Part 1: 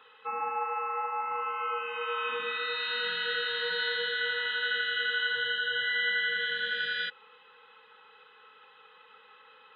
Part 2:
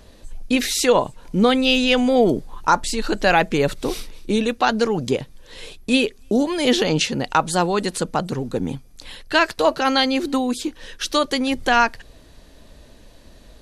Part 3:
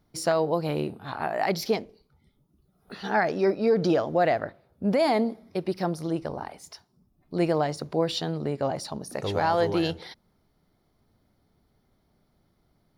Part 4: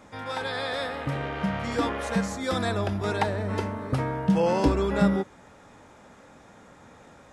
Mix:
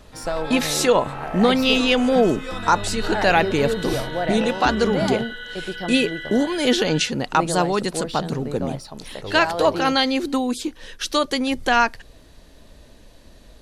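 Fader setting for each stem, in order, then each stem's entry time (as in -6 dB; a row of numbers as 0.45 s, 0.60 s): -5.0 dB, -1.0 dB, -3.0 dB, -5.0 dB; 0.00 s, 0.00 s, 0.00 s, 0.00 s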